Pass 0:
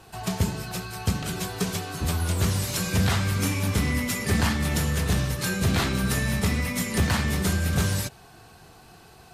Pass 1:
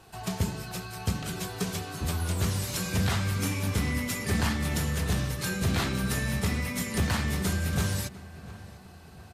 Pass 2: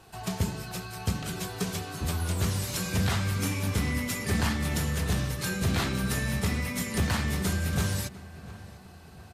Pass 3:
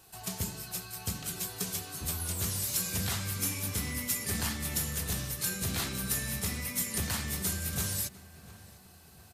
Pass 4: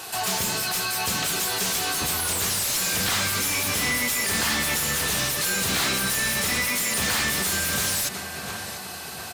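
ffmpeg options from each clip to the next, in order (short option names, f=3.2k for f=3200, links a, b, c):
-filter_complex "[0:a]asplit=2[a][b];[b]adelay=698,lowpass=f=2.4k:p=1,volume=-17dB,asplit=2[c][d];[d]adelay=698,lowpass=f=2.4k:p=1,volume=0.5,asplit=2[e][f];[f]adelay=698,lowpass=f=2.4k:p=1,volume=0.5,asplit=2[g][h];[h]adelay=698,lowpass=f=2.4k:p=1,volume=0.5[i];[a][c][e][g][i]amix=inputs=5:normalize=0,volume=-4dB"
-af anull
-af "aemphasis=mode=production:type=75kf,volume=-8.5dB"
-filter_complex "[0:a]asplit=2[a][b];[b]highpass=f=720:p=1,volume=32dB,asoftclip=type=tanh:threshold=-14.5dB[c];[a][c]amix=inputs=2:normalize=0,lowpass=f=5.4k:p=1,volume=-6dB"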